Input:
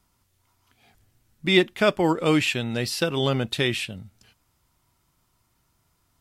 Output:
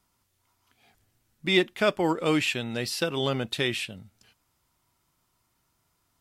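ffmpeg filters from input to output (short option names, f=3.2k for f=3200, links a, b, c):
-filter_complex "[0:a]lowshelf=f=150:g=-6.5,asplit=2[a][b];[b]asoftclip=type=tanh:threshold=-13.5dB,volume=-11.5dB[c];[a][c]amix=inputs=2:normalize=0,volume=-4.5dB"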